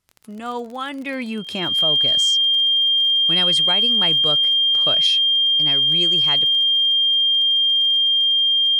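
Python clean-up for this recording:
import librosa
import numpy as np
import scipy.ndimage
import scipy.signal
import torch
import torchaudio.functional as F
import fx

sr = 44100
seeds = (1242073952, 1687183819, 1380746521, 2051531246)

y = fx.fix_declick_ar(x, sr, threshold=6.5)
y = fx.notch(y, sr, hz=3200.0, q=30.0)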